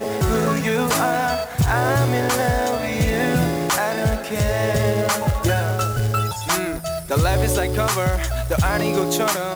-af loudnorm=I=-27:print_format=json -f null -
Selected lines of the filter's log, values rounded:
"input_i" : "-20.5",
"input_tp" : "-8.4",
"input_lra" : "0.9",
"input_thresh" : "-30.5",